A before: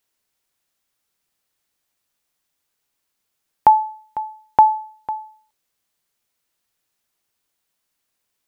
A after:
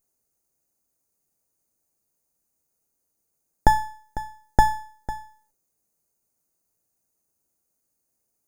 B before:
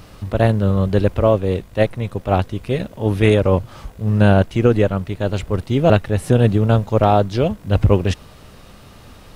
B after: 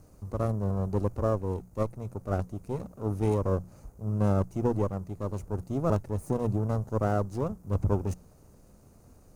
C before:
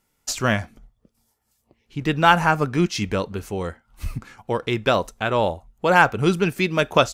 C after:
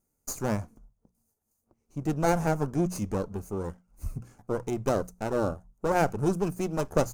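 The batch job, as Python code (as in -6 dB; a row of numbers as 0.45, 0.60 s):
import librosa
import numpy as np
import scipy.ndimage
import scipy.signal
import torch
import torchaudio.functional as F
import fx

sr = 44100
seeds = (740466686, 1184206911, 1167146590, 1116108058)

y = fx.lower_of_two(x, sr, delay_ms=0.46)
y = fx.band_shelf(y, sr, hz=2700.0, db=-16.0, octaves=1.7)
y = fx.hum_notches(y, sr, base_hz=60, count=3)
y = y * 10.0 ** (-30 / 20.0) / np.sqrt(np.mean(np.square(y)))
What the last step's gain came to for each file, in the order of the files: +2.0, -12.0, -5.5 dB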